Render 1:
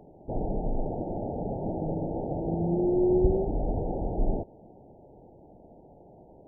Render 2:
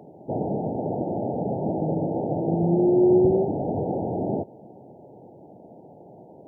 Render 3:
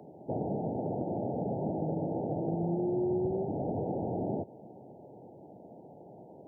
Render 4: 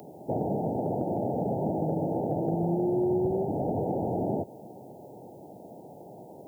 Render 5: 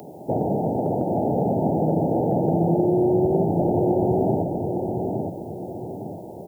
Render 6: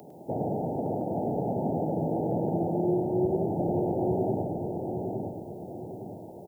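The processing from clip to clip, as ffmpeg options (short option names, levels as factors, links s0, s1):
-af "highpass=f=110:w=0.5412,highpass=f=110:w=1.3066,volume=2"
-filter_complex "[0:a]acrossover=split=180|720[s0][s1][s2];[s0]acompressor=threshold=0.0224:ratio=4[s3];[s1]acompressor=threshold=0.0355:ratio=4[s4];[s2]acompressor=threshold=0.0112:ratio=4[s5];[s3][s4][s5]amix=inputs=3:normalize=0,volume=0.631"
-af "crystalizer=i=6.5:c=0,volume=1.5"
-filter_complex "[0:a]asplit=2[s0][s1];[s1]adelay=862,lowpass=f=930:p=1,volume=0.668,asplit=2[s2][s3];[s3]adelay=862,lowpass=f=930:p=1,volume=0.43,asplit=2[s4][s5];[s5]adelay=862,lowpass=f=930:p=1,volume=0.43,asplit=2[s6][s7];[s7]adelay=862,lowpass=f=930:p=1,volume=0.43,asplit=2[s8][s9];[s9]adelay=862,lowpass=f=930:p=1,volume=0.43[s10];[s0][s2][s4][s6][s8][s10]amix=inputs=6:normalize=0,volume=2"
-af "aecho=1:1:104:0.501,volume=0.398"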